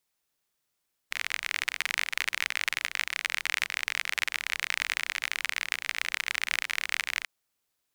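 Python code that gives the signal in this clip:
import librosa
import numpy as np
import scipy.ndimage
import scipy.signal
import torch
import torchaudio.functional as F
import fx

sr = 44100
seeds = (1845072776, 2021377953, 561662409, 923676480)

y = fx.rain(sr, seeds[0], length_s=6.14, drops_per_s=40.0, hz=2100.0, bed_db=-30.0)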